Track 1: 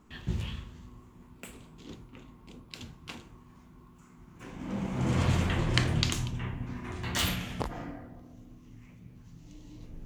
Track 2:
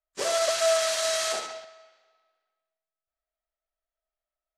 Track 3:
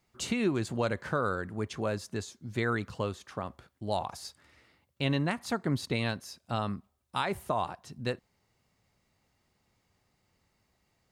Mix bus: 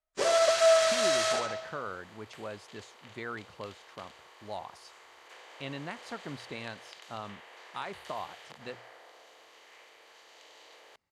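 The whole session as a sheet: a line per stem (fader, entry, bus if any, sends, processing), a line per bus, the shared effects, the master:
-12.5 dB, 0.90 s, no send, spectral levelling over time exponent 0.4; steep high-pass 460 Hz 36 dB/octave; compression 3:1, threshold -34 dBFS, peak gain reduction 11 dB
+2.0 dB, 0.00 s, no send, none
-5.5 dB, 0.60 s, no send, bass shelf 330 Hz -10 dB; hum notches 60/120 Hz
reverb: none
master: low-pass 11 kHz 12 dB/octave; treble shelf 3.8 kHz -7.5 dB

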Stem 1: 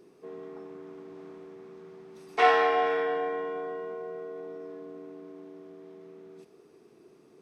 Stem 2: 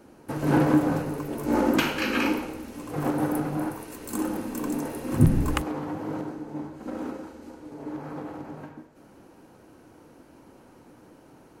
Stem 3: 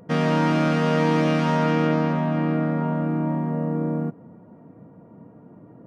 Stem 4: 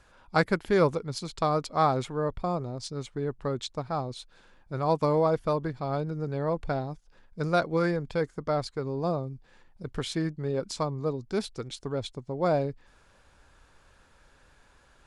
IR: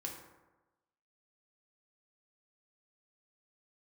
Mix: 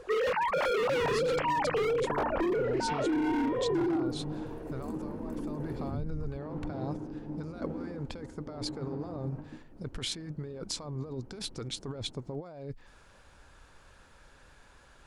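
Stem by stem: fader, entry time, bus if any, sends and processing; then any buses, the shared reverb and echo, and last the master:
-12.5 dB, 0.50 s, bus A, no send, high-order bell 3.7 kHz +14.5 dB
-10.5 dB, 0.75 s, bus A, no send, peak limiter -17.5 dBFS, peak gain reduction 11 dB
-2.5 dB, 0.00 s, no bus, no send, formants replaced by sine waves; wavefolder -17.5 dBFS
-4.0 dB, 0.00 s, no bus, no send, compressor with a negative ratio -36 dBFS, ratio -1
bus A: 0.0 dB, tilt EQ -4 dB/octave; compression, threshold -34 dBFS, peak gain reduction 17.5 dB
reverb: none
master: compression, threshold -26 dBFS, peak gain reduction 5.5 dB

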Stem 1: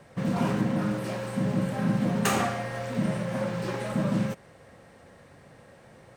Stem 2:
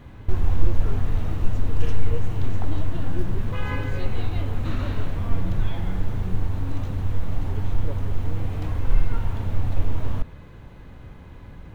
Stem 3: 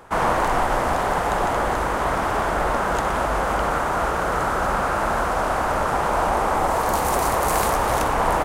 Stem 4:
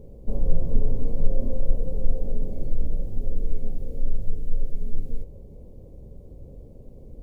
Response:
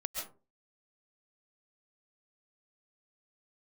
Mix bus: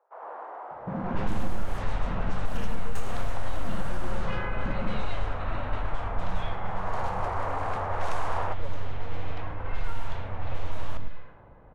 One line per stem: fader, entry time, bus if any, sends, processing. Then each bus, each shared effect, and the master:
-3.0 dB, 0.70 s, bus B, no send, no echo send, none
+2.0 dB, 0.75 s, bus A, send -22 dB, echo send -13 dB, none
6.62 s -18 dB -> 6.87 s -8.5 dB, 0.00 s, bus A, no send, echo send -3 dB, high-pass 380 Hz 24 dB/octave; treble shelf 8.6 kHz +4.5 dB
-7.0 dB, 1.20 s, bus B, send -16.5 dB, no echo send, ring modulator 24 Hz
bus A: 0.0 dB, high-pass 500 Hz 24 dB/octave; compression, threshold -33 dBFS, peak gain reduction 8 dB
bus B: 0.0 dB, compression, threshold -29 dBFS, peak gain reduction 12 dB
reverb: on, RT60 0.35 s, pre-delay 95 ms
echo: delay 104 ms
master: level-controlled noise filter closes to 740 Hz, open at -14 dBFS; compression, threshold -17 dBFS, peak gain reduction 7 dB

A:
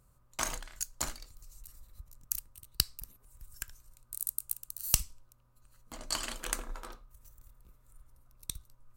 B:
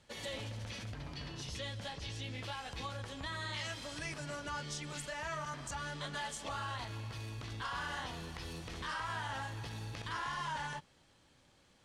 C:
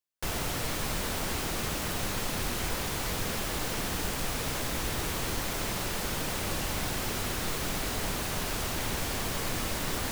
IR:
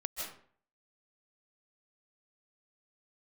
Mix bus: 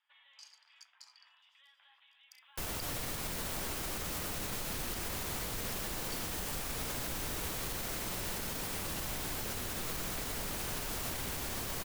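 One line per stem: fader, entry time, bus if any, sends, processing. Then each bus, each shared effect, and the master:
-5.5 dB, 0.00 s, no send, no echo send, band-pass filter 4.8 kHz, Q 15
-12.5 dB, 0.00 s, no send, no echo send, steep high-pass 900 Hz 36 dB/octave; peak limiter -40.5 dBFS, peak gain reduction 11 dB; steep low-pass 3.6 kHz 96 dB/octave
-6.5 dB, 2.35 s, no send, echo send -5 dB, none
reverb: none
echo: delay 118 ms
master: treble shelf 8.8 kHz +6.5 dB; peak limiter -28 dBFS, peak gain reduction 9.5 dB

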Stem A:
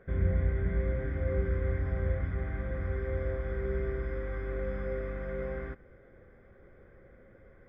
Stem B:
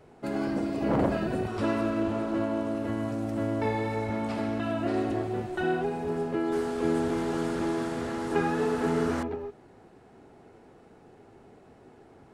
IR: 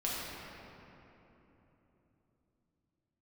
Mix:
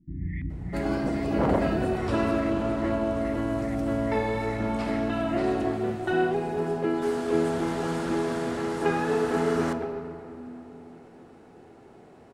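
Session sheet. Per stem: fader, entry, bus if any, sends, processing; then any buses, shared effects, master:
-0.5 dB, 0.00 s, send -19.5 dB, FFT band-reject 360–1700 Hz; comb 6.8 ms, depth 45%; LFO low-pass saw up 2.4 Hz 220–3000 Hz
+1.0 dB, 0.50 s, send -13.5 dB, none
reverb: on, RT60 3.5 s, pre-delay 5 ms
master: bass shelf 97 Hz -6.5 dB

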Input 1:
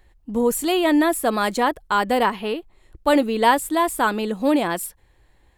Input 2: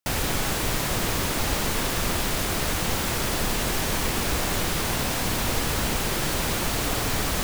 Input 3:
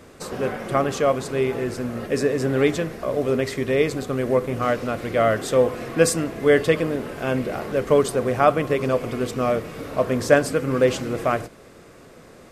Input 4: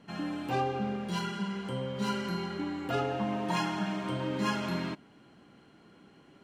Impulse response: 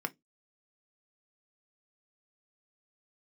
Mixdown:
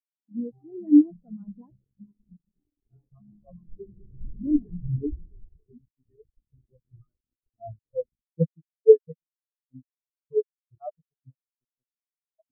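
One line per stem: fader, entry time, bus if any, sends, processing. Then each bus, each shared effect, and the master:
-4.5 dB, 0.00 s, muted 1.82–4.34 s, no send, local Wiener filter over 9 samples
3.11 s -14 dB -> 3.85 s -5.5 dB -> 5.30 s -5.5 dB -> 5.97 s -12.5 dB, 0.80 s, no send, peaking EQ 390 Hz +12.5 dB 1.2 oct
+0.5 dB, 2.40 s, no send, expander on every frequency bin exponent 3
-0.5 dB, 0.00 s, no send, none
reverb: none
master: tone controls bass +12 dB, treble -3 dB; bit crusher 4-bit; spectral contrast expander 4:1

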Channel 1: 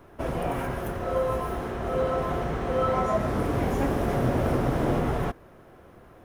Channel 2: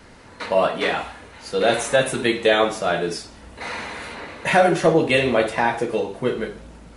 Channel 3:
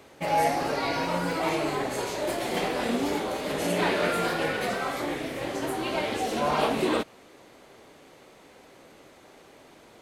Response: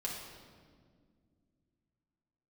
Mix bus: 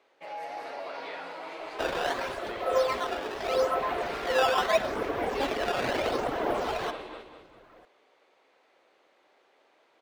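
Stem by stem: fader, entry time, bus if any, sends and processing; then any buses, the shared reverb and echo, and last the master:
+2.0 dB, 1.60 s, no bus, send -11.5 dB, no echo send, reverb removal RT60 1.7 s; bass shelf 67 Hz +10 dB; decimation with a swept rate 12×, swing 160% 0.78 Hz
-16.5 dB, 0.25 s, bus A, no send, no echo send, none
-12.0 dB, 0.00 s, bus A, no send, echo send -4 dB, none
bus A: 0.0 dB, peak limiter -29 dBFS, peak gain reduction 9 dB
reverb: on, RT60 1.9 s, pre-delay 5 ms
echo: feedback delay 201 ms, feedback 40%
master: three-band isolator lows -23 dB, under 360 Hz, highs -15 dB, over 4.9 kHz

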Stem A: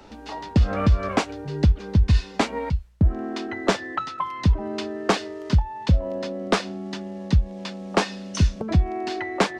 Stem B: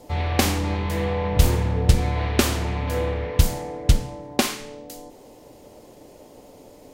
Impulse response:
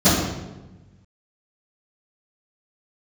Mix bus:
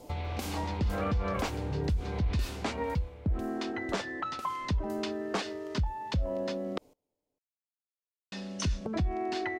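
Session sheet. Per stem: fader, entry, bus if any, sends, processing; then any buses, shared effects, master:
-4.0 dB, 0.25 s, muted 6.78–8.32 s, no send, no echo send, none
2.35 s -3.5 dB -> 2.98 s -15.5 dB, 0.00 s, no send, echo send -24 dB, band-stop 1.8 kHz, Q 7.2; compression 6:1, threshold -29 dBFS, peak gain reduction 19 dB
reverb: none
echo: delay 449 ms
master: peak limiter -22.5 dBFS, peak gain reduction 10.5 dB

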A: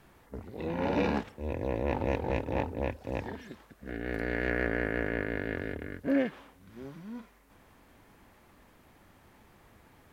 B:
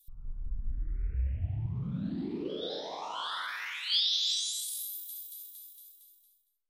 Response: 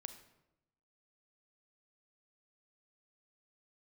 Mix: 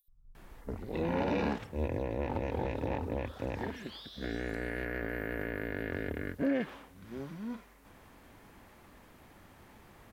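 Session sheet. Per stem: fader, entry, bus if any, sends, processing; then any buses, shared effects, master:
+2.5 dB, 0.35 s, no send, none
4.98 s -18 dB -> 5.22 s -10 dB, 0.00 s, no send, peaking EQ 7.2 kHz -9 dB 1.5 oct; upward compressor, threshold -53 dBFS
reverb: none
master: peak limiter -22.5 dBFS, peak gain reduction 11.5 dB

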